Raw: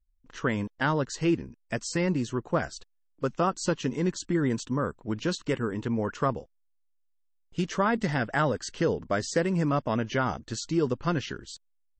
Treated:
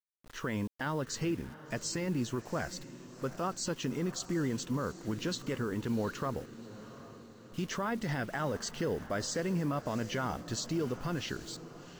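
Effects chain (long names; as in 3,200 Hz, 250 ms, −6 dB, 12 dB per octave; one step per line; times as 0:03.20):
brickwall limiter −23.5 dBFS, peak gain reduction 10.5 dB
bit reduction 9 bits
feedback delay with all-pass diffusion 751 ms, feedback 53%, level −15 dB
level −1.5 dB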